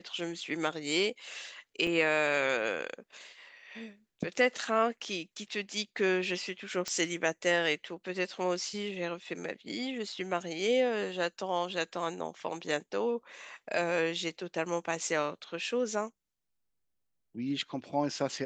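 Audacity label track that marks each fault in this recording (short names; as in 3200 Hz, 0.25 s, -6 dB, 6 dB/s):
1.870000	1.870000	gap 4.3 ms
6.880000	6.880000	pop -20 dBFS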